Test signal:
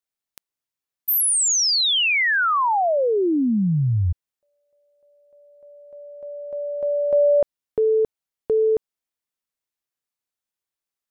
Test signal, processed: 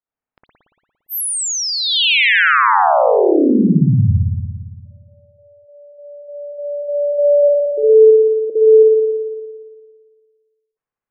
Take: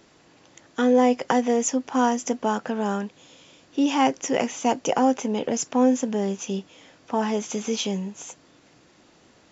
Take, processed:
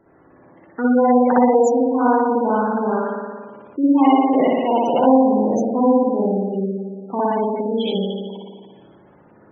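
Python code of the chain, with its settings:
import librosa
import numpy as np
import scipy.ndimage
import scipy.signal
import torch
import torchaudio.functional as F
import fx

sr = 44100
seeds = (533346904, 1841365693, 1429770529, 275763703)

y = fx.env_lowpass(x, sr, base_hz=1700.0, full_db=-17.0)
y = fx.rev_spring(y, sr, rt60_s=1.7, pass_ms=(57,), chirp_ms=30, drr_db=-7.5)
y = fx.spec_gate(y, sr, threshold_db=-20, keep='strong')
y = F.gain(torch.from_numpy(y), -1.0).numpy()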